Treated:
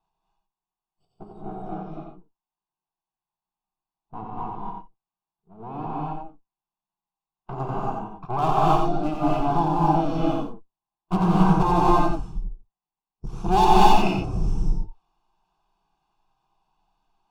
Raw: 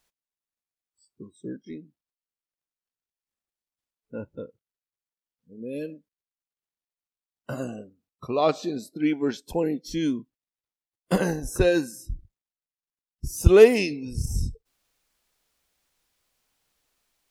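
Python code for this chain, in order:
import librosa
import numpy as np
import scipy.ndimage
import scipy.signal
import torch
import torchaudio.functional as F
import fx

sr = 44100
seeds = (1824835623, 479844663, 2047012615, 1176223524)

p1 = fx.lower_of_two(x, sr, delay_ms=1.1)
p2 = scipy.signal.sosfilt(scipy.signal.butter(2, 1600.0, 'lowpass', fs=sr, output='sos'), p1)
p3 = fx.peak_eq(p2, sr, hz=73.0, db=-6.5, octaves=1.8)
p4 = fx.level_steps(p3, sr, step_db=11)
p5 = p3 + (p4 * librosa.db_to_amplitude(2.0))
p6 = np.clip(p5, -10.0 ** (-17.5 / 20.0), 10.0 ** (-17.5 / 20.0))
p7 = fx.fixed_phaser(p6, sr, hz=370.0, stages=8)
p8 = p7 + fx.echo_single(p7, sr, ms=90, db=-4.5, dry=0)
p9 = fx.rev_gated(p8, sr, seeds[0], gate_ms=300, shape='rising', drr_db=-5.0)
y = p9 * librosa.db_to_amplitude(1.5)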